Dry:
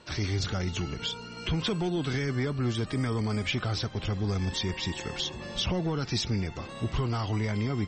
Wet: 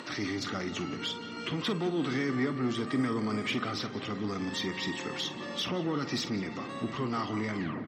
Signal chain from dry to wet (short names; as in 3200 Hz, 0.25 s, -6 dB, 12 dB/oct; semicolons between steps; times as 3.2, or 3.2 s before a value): tape stop at the end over 0.30 s; soft clip -22.5 dBFS, distortion -21 dB; HPF 120 Hz 24 dB/oct; low shelf 300 Hz -8 dB; darkening echo 0.176 s, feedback 73%, low-pass 3100 Hz, level -13.5 dB; upward compressor, threshold -38 dBFS; high shelf 5000 Hz -5.5 dB; doubler 47 ms -12 dB; small resonant body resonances 270/1200/1900 Hz, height 10 dB, ringing for 30 ms